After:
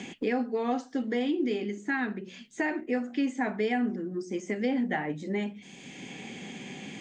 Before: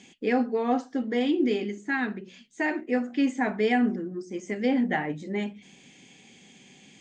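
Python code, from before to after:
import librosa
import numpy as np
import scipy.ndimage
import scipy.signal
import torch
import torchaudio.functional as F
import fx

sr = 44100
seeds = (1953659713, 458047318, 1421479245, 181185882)

y = fx.band_squash(x, sr, depth_pct=70)
y = y * 10.0 ** (-3.5 / 20.0)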